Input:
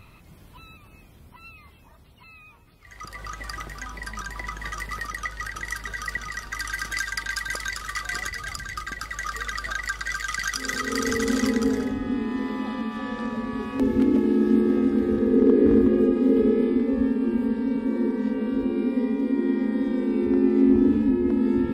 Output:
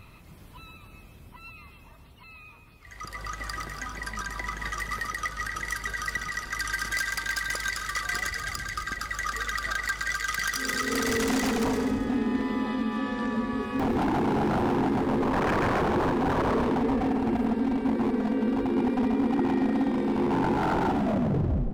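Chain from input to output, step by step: tape stop on the ending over 0.76 s; wavefolder -20.5 dBFS; two-band feedback delay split 590 Hz, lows 413 ms, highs 135 ms, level -9.5 dB

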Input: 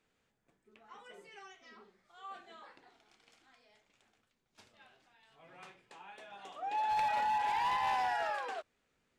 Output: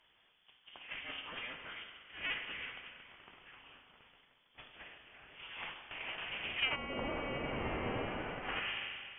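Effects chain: cycle switcher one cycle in 3, inverted; frequency inversion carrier 3.4 kHz; on a send at -6 dB: reverberation RT60 1.9 s, pre-delay 54 ms; on the sum: low-pass that closes with the level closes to 630 Hz, closed at -31.5 dBFS; trim +8.5 dB

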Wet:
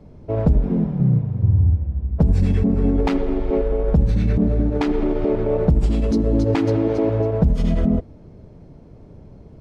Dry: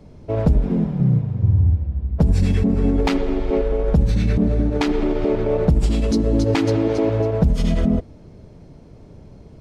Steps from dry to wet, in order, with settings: treble shelf 2.3 kHz -9.5 dB

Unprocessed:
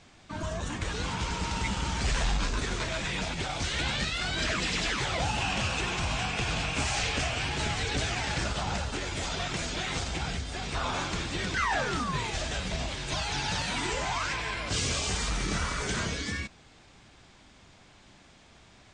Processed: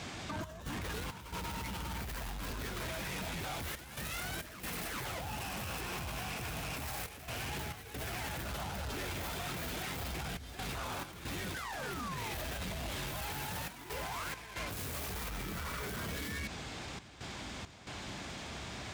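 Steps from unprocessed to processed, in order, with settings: tracing distortion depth 0.37 ms; high-pass 47 Hz 24 dB/octave; compressor with a negative ratio -40 dBFS, ratio -1; peak limiter -32 dBFS, peak gain reduction 9.5 dB; trance gate "xx.xx.xxxxxxxxx" 68 bpm -12 dB; saturation -40 dBFS, distortion -13 dB; trim +5.5 dB

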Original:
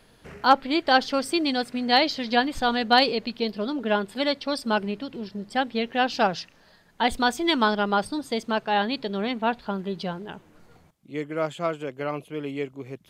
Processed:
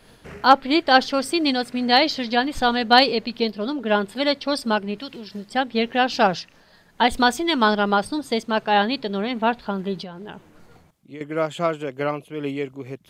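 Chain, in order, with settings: 4.98–5.50 s: tilt shelf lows -5.5 dB, about 1.3 kHz; 9.97–11.21 s: compression 12:1, threshold -36 dBFS, peak gain reduction 11.5 dB; random flutter of the level, depth 60%; trim +7 dB

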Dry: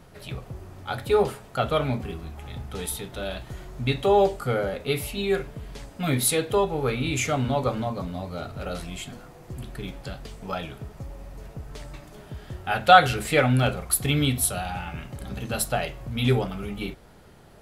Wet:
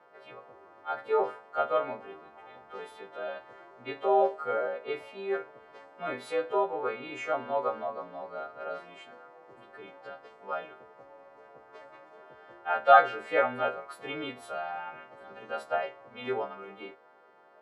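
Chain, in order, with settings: partials quantised in pitch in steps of 2 st; Butterworth band-pass 810 Hz, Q 0.73; trim -2.5 dB

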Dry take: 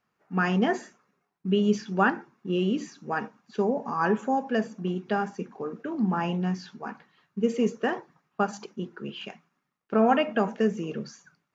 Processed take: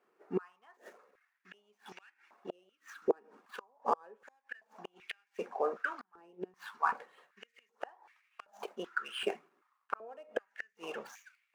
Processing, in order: median filter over 9 samples; inverted gate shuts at -20 dBFS, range -35 dB; step-sequenced high-pass 2.6 Hz 390–2300 Hz; trim +1.5 dB

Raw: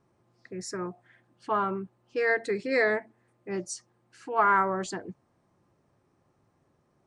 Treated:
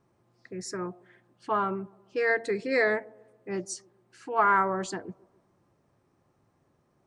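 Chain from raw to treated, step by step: feedback echo behind a band-pass 139 ms, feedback 47%, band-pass 430 Hz, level -22 dB

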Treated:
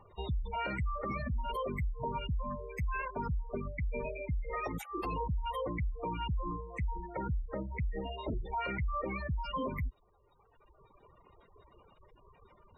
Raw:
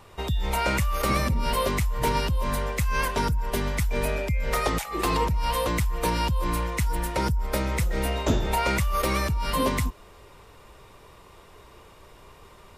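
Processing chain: spectral gate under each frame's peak -15 dB strong; reverb removal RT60 1.8 s; peak limiter -21 dBFS, peak gain reduction 8.5 dB; trim -6.5 dB

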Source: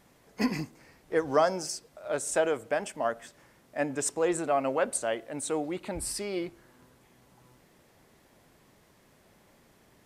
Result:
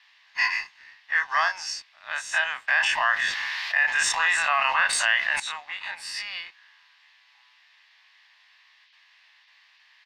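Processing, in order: every event in the spectrogram widened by 60 ms; gate with hold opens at -48 dBFS; high-pass 1.4 kHz 24 dB/octave; comb 1.1 ms, depth 66%; waveshaping leveller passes 1; band noise 1.9–5.3 kHz -64 dBFS; distance through air 230 m; 2.68–5.40 s: level flattener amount 70%; trim +7.5 dB

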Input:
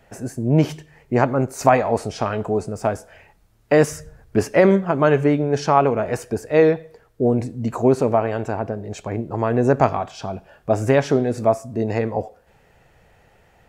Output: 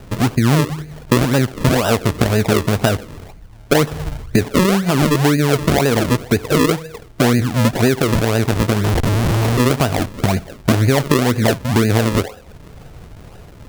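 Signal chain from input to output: bass shelf 470 Hz +11.5 dB; in parallel at +2 dB: peak limiter -5 dBFS, peak gain reduction 8.5 dB; on the sum: compression 5:1, threshold -14 dBFS, peak gain reduction 14.5 dB; decimation with a swept rate 40×, swing 100% 2 Hz; 8.84–9.60 s: Schmitt trigger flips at -32.5 dBFS; on a send at -22.5 dB: reverberation, pre-delay 3 ms; on the sum: trim +1.5 dB

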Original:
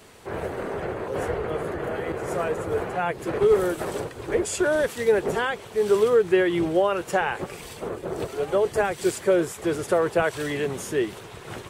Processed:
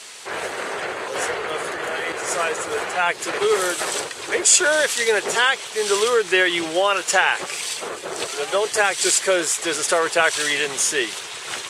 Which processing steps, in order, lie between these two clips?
frequency weighting ITU-R 468; trim +6 dB

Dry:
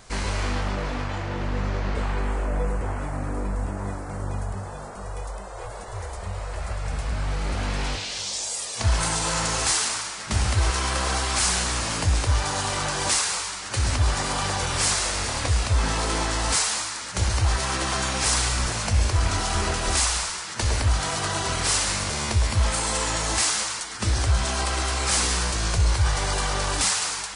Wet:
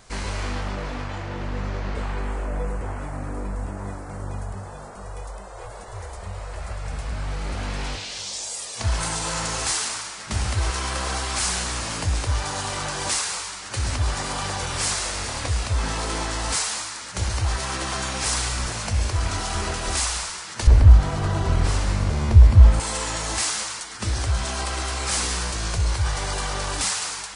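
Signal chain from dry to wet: 20.67–22.80 s: tilt EQ -3.5 dB/octave; trim -2 dB

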